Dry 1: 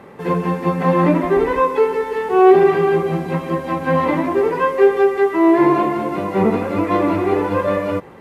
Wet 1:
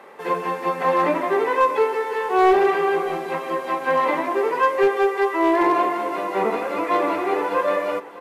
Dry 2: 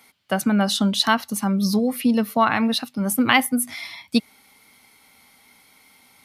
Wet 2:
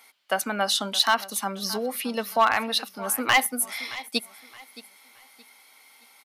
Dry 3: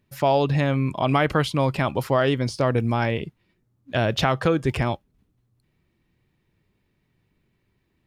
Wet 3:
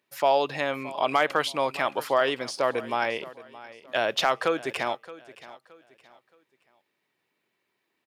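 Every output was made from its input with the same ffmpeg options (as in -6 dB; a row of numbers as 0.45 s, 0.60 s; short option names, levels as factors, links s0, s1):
-filter_complex "[0:a]highpass=510,asoftclip=type=hard:threshold=0.282,asplit=2[s0][s1];[s1]aecho=0:1:621|1242|1863:0.126|0.0403|0.0129[s2];[s0][s2]amix=inputs=2:normalize=0"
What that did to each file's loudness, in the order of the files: -4.0 LU, -4.0 LU, -3.5 LU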